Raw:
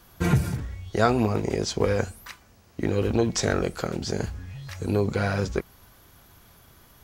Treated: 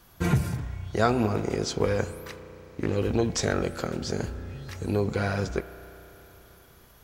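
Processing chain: spring tank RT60 3.8 s, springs 33 ms, chirp 55 ms, DRR 12.5 dB; 2.29–2.97 s: loudspeaker Doppler distortion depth 0.26 ms; trim -2 dB

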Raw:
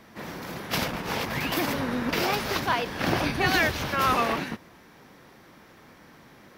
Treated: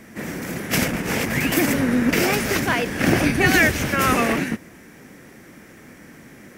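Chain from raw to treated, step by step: graphic EQ 250/1000/2000/4000/8000 Hz +4/-9/+5/-10/+9 dB; trim +7 dB

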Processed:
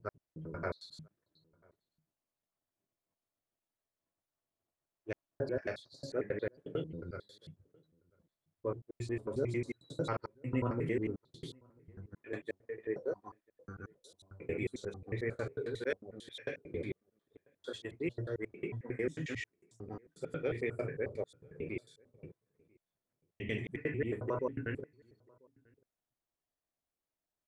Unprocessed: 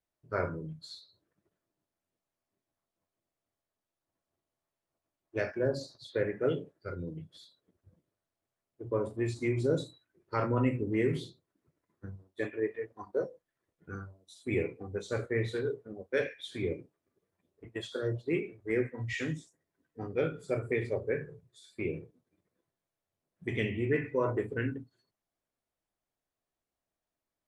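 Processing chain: slices played last to first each 90 ms, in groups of 4; echo from a far wall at 170 m, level -29 dB; trim -5 dB

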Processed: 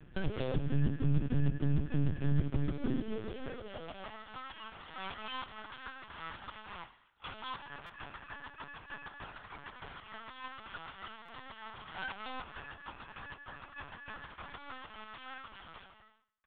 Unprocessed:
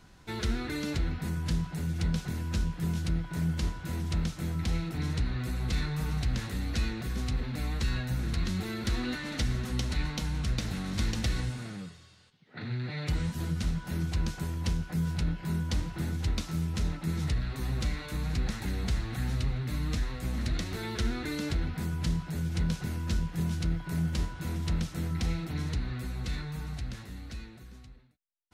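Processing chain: companding laws mixed up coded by A; peaking EQ 180 Hz -15 dB 0.22 oct; comb 1.1 ms, depth 32%; compression 12:1, threshold -38 dBFS, peak gain reduction 15.5 dB; high-pass sweep 84 Hz -> 600 Hz, 4.32–7.39 s; speed mistake 45 rpm record played at 78 rpm; distance through air 290 m; thinning echo 95 ms, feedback 40%, high-pass 310 Hz, level -16.5 dB; LPC vocoder at 8 kHz pitch kept; buffer glitch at 7.86/11.25 s, samples 256, times 5; trim +8 dB

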